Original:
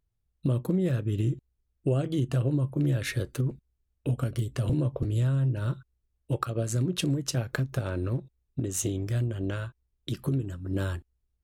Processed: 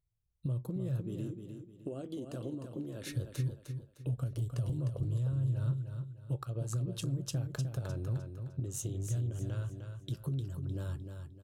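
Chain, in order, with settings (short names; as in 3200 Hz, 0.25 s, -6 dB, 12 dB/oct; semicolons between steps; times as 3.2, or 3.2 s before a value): 1.01–3.12 resonant low shelf 180 Hz -8.5 dB, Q 3; compressor, threshold -27 dBFS, peak gain reduction 7 dB; ten-band EQ 125 Hz +7 dB, 250 Hz -5 dB, 2000 Hz -9 dB; feedback echo 0.305 s, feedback 34%, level -7 dB; gain -7.5 dB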